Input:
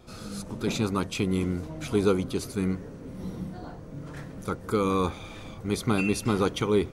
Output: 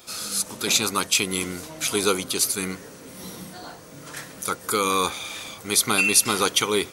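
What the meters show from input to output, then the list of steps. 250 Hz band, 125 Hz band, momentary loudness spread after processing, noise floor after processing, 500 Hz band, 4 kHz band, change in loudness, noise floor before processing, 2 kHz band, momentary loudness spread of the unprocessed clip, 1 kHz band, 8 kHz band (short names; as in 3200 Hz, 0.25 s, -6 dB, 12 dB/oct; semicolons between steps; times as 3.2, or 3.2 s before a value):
-3.5 dB, -7.5 dB, 20 LU, -44 dBFS, 0.0 dB, +14.0 dB, +6.5 dB, -43 dBFS, +10.5 dB, 15 LU, +6.5 dB, +19.0 dB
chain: tilt +4.5 dB/oct; gain +5.5 dB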